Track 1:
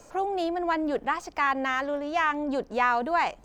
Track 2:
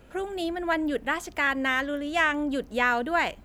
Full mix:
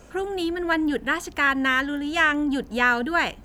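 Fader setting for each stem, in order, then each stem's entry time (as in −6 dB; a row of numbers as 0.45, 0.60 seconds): −2.5, +3.0 decibels; 0.00, 0.00 seconds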